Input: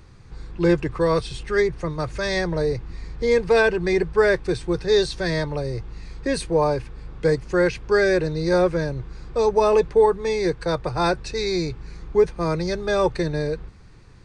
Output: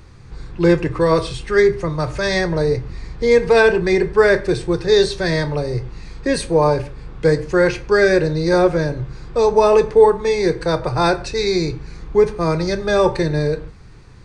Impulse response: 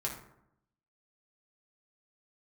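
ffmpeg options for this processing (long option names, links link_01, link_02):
-filter_complex "[0:a]asplit=2[link_01][link_02];[1:a]atrim=start_sample=2205,atrim=end_sample=6174,adelay=25[link_03];[link_02][link_03]afir=irnorm=-1:irlink=0,volume=-13dB[link_04];[link_01][link_04]amix=inputs=2:normalize=0,volume=4.5dB"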